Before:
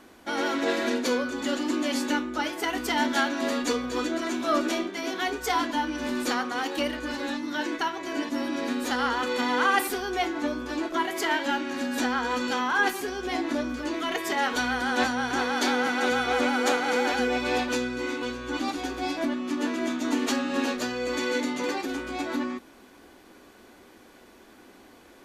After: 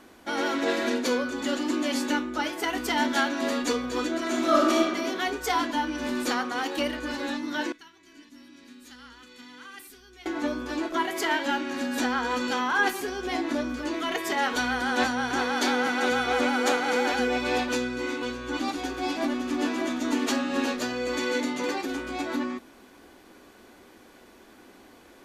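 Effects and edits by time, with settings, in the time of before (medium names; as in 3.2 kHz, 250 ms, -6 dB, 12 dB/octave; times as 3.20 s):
4.25–4.90 s: reverb throw, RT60 1.2 s, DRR -1 dB
7.72–10.26 s: amplifier tone stack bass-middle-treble 6-0-2
18.38–19.33 s: echo throw 560 ms, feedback 50%, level -7 dB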